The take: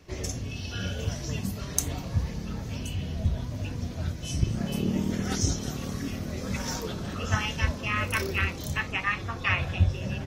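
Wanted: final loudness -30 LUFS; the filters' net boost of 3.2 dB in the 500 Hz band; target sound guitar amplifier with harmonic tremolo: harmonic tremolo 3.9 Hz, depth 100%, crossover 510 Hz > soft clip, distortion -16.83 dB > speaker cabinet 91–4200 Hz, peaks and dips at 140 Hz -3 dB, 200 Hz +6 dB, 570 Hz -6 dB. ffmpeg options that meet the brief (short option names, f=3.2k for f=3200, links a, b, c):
-filter_complex "[0:a]equalizer=f=500:t=o:g=6.5,acrossover=split=510[a][b];[a]aeval=exprs='val(0)*(1-1/2+1/2*cos(2*PI*3.9*n/s))':c=same[c];[b]aeval=exprs='val(0)*(1-1/2-1/2*cos(2*PI*3.9*n/s))':c=same[d];[c][d]amix=inputs=2:normalize=0,asoftclip=threshold=-22.5dB,highpass=91,equalizer=f=140:t=q:w=4:g=-3,equalizer=f=200:t=q:w=4:g=6,equalizer=f=570:t=q:w=4:g=-6,lowpass=f=4.2k:w=0.5412,lowpass=f=4.2k:w=1.3066,volume=6dB"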